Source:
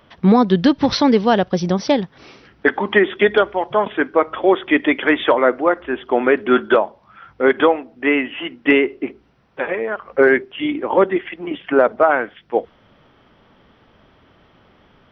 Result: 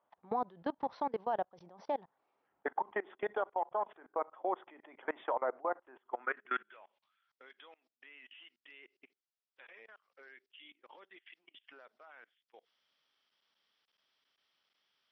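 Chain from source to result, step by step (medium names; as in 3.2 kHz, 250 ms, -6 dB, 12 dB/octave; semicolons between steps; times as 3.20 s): band-pass sweep 830 Hz -> 5 kHz, 5.89–7.38 s; level held to a coarse grid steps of 24 dB; trim -8 dB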